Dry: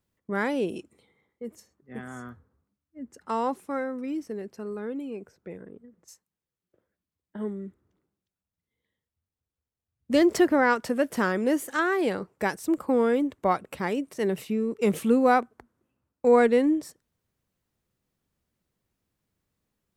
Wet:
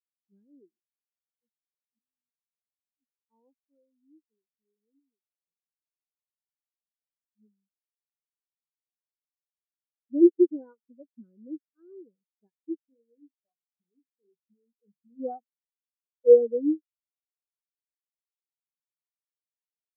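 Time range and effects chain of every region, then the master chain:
12.89–15.2 compressor 4:1, threshold -28 dBFS + doubler 34 ms -9 dB + Doppler distortion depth 0.15 ms
whole clip: tilt -2 dB/oct; spectral expander 4:1; gain +1 dB

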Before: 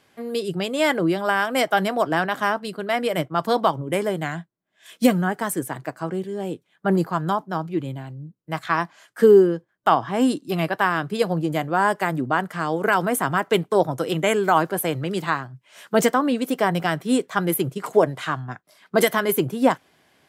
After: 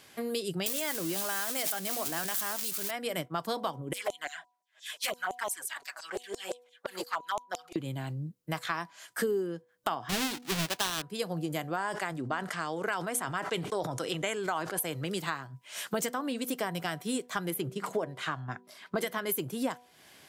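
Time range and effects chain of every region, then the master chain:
0.66–2.91 switching spikes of -15.5 dBFS + backwards sustainer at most 35 dB/s
3.93–7.76 high shelf 6500 Hz -6.5 dB + LFO high-pass saw down 5.8 Hz 470–7500 Hz + envelope flanger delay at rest 8.9 ms, full sweep at -19.5 dBFS
10.09–11.02 half-waves squared off + bell 3200 Hz +6.5 dB 2.1 oct
11.76–14.8 LPF 8000 Hz + bell 170 Hz -4 dB 2.4 oct + sustainer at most 65 dB/s
17.5–19.26 high shelf 5500 Hz -11 dB + de-hum 190.9 Hz, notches 3
whole clip: high shelf 2800 Hz +10 dB; compressor 4:1, threshold -33 dBFS; de-hum 245.2 Hz, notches 4; gain +1 dB

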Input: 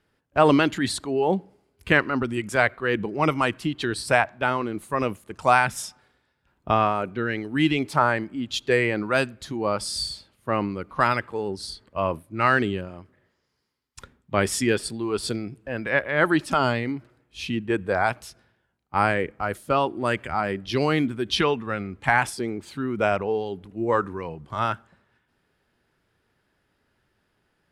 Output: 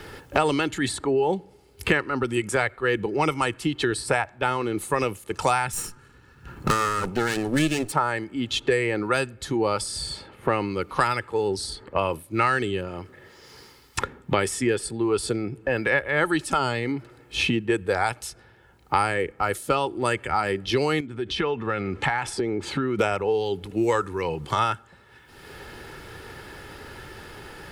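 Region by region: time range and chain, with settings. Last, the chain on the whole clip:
5.73–7.92 minimum comb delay 0.7 ms + tone controls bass +10 dB, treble +11 dB
21–22.99 compressor 2.5:1, threshold -35 dBFS + air absorption 52 m
whole clip: dynamic EQ 8400 Hz, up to +8 dB, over -51 dBFS, Q 1.5; comb 2.3 ms, depth 41%; three-band squash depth 100%; gain -1.5 dB

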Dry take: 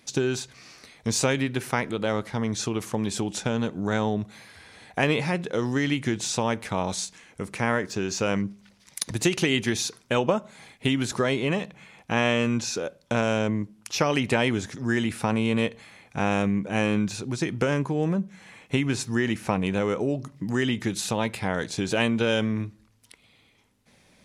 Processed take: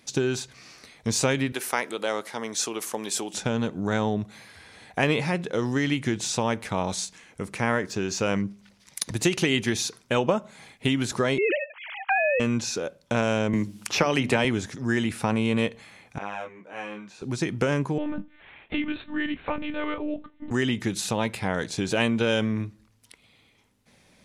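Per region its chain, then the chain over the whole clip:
1.52–3.34 HPF 380 Hz + high shelf 7700 Hz +12 dB
11.38–12.4 sine-wave speech + three-band squash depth 100%
13.53–14.45 notches 50/100/150/200/250/300/350 Hz + three-band squash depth 70%
16.18–17.22 HPF 950 Hz + tilt -4.5 dB/oct + detuned doubles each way 11 cents
17.98–20.51 monotone LPC vocoder at 8 kHz 300 Hz + low shelf 210 Hz -10.5 dB + doubler 24 ms -14 dB
whole clip: dry

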